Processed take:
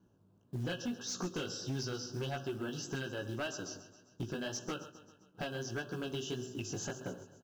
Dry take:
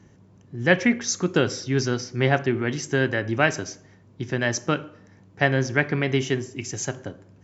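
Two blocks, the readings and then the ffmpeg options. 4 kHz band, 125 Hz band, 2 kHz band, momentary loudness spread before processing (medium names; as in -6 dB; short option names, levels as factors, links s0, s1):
-10.0 dB, -15.0 dB, -19.5 dB, 11 LU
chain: -filter_complex "[0:a]acrossover=split=3600[s0][s1];[s0]acompressor=threshold=0.0251:ratio=16[s2];[s2][s1]amix=inputs=2:normalize=0,asuperstop=centerf=2100:order=20:qfactor=2.3,aemphasis=mode=reproduction:type=50fm,acrusher=bits=7:mode=log:mix=0:aa=0.000001,equalizer=f=70:t=o:w=1.4:g=-6,flanger=delay=15.5:depth=4.8:speed=1.7,agate=range=0.224:threshold=0.00282:ratio=16:detection=peak,asplit=2[s3][s4];[s4]aecho=0:1:133|266|399|532|665:0.158|0.0888|0.0497|0.0278|0.0156[s5];[s3][s5]amix=inputs=2:normalize=0,volume=47.3,asoftclip=hard,volume=0.0211,acrossover=split=6100[s6][s7];[s7]acompressor=threshold=0.00251:ratio=4:attack=1:release=60[s8];[s6][s8]amix=inputs=2:normalize=0,volume=1.26"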